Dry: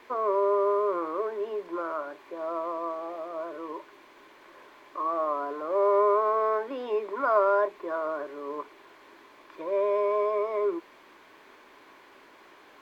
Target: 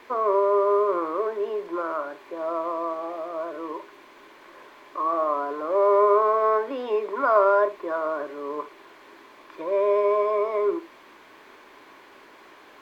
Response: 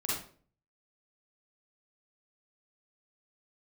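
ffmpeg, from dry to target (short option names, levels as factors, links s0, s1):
-filter_complex "[0:a]asplit=2[s0][s1];[1:a]atrim=start_sample=2205,atrim=end_sample=3528[s2];[s1][s2]afir=irnorm=-1:irlink=0,volume=0.141[s3];[s0][s3]amix=inputs=2:normalize=0,volume=1.41"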